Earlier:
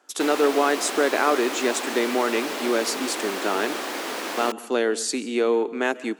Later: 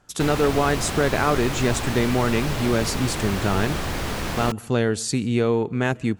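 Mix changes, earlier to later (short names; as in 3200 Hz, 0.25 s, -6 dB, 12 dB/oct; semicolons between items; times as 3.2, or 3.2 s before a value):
speech: send -9.0 dB; master: remove steep high-pass 270 Hz 36 dB/oct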